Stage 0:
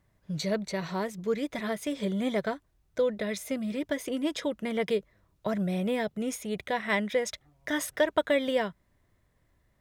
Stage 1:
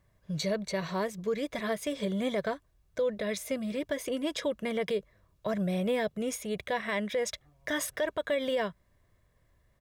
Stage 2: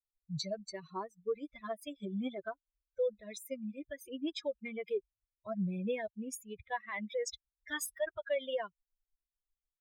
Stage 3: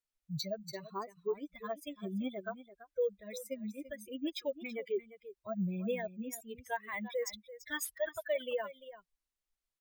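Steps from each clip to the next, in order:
comb 1.8 ms, depth 31%; peak limiter -21.5 dBFS, peak gain reduction 10.5 dB
expander on every frequency bin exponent 3
delay 338 ms -15 dB; careless resampling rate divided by 2×, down none, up hold; warped record 33 1/3 rpm, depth 100 cents

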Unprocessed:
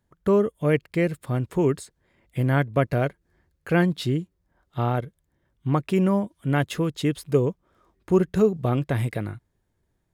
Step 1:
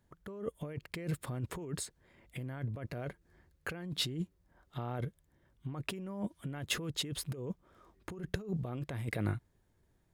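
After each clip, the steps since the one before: compressor with a negative ratio -31 dBFS, ratio -1; trim -7.5 dB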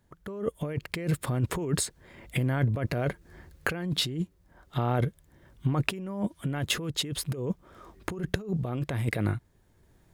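recorder AGC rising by 8.6 dB/s; trim +4.5 dB

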